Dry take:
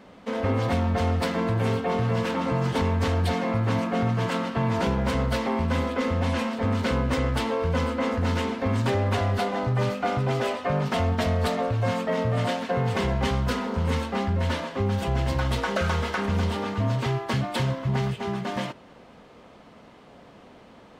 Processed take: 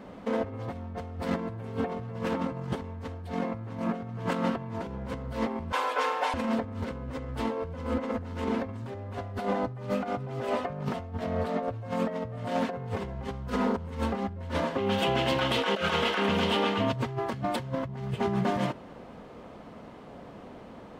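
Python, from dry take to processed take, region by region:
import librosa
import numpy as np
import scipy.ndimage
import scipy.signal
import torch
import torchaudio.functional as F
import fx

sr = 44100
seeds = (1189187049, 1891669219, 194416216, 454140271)

y = fx.chain(x, sr, fx.highpass(hz=560.0, slope=24),
    fx.comb(ms=6.7, depth=0.98), at=(5.72, 6.34))
y = fx.chain(y, sr, fx.highpass(hz=150.0, slope=12),
    fx.high_shelf(hz=5900.0, db=-9.0), at=(11.21, 11.63))
y = fx.chain(y, sr, fx.highpass(hz=240.0, slope=12),
    fx.peak_eq(hz=3000.0, db=12.5, octaves=0.84), at=(14.78, 16.93))
y = fx.high_shelf(y, sr, hz=2100.0, db=-12.0)
y = fx.over_compress(y, sr, threshold_db=-30.0, ratio=-0.5)
y = fx.high_shelf(y, sr, hz=6700.0, db=8.0)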